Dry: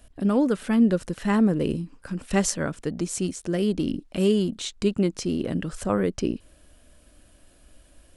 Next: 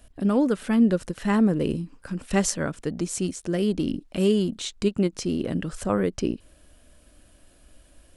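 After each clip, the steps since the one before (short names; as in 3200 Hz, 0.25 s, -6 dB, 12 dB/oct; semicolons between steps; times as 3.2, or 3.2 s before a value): ending taper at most 590 dB/s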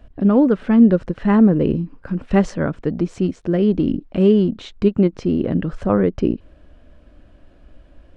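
tape spacing loss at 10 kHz 35 dB; gain +8.5 dB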